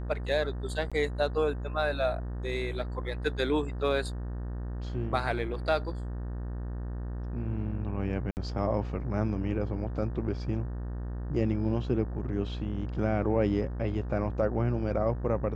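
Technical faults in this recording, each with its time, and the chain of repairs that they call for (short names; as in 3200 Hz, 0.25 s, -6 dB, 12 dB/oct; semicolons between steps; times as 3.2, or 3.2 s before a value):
buzz 60 Hz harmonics 31 -35 dBFS
0.9–0.92 gap 16 ms
8.31–8.37 gap 59 ms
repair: de-hum 60 Hz, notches 31; interpolate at 0.9, 16 ms; interpolate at 8.31, 59 ms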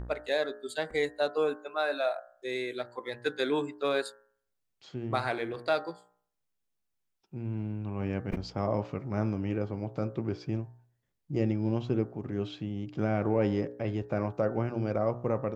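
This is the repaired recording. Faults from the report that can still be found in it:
none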